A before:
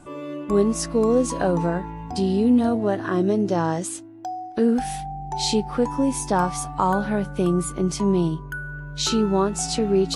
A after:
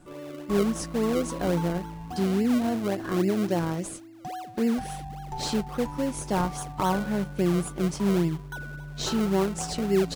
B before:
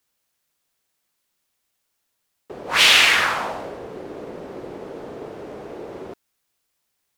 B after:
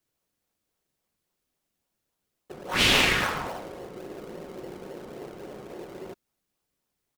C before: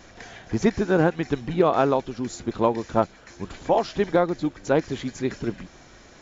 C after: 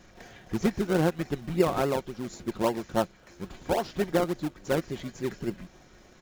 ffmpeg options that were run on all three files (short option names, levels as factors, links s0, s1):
-filter_complex "[0:a]aecho=1:1:5.5:0.31,asplit=2[s0][s1];[s1]acrusher=samples=35:mix=1:aa=0.000001:lfo=1:lforange=35:lforate=3.6,volume=0.562[s2];[s0][s2]amix=inputs=2:normalize=0,volume=0.376"